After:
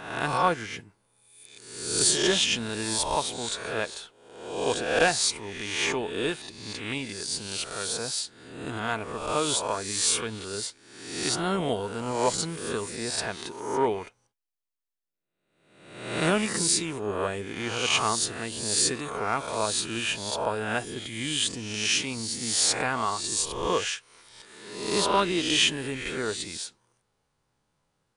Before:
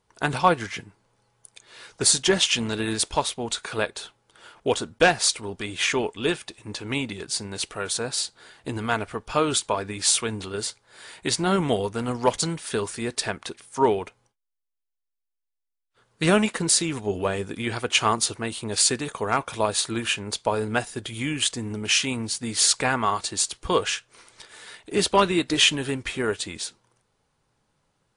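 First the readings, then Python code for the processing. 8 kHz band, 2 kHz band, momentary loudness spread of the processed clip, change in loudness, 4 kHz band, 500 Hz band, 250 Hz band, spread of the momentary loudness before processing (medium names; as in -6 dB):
-2.0 dB, -2.5 dB, 13 LU, -3.0 dB, -2.0 dB, -3.5 dB, -4.5 dB, 12 LU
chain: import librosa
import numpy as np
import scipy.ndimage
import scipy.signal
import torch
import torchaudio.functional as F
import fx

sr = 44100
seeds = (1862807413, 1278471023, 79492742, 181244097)

y = fx.spec_swells(x, sr, rise_s=0.87)
y = F.gain(torch.from_numpy(y), -6.5).numpy()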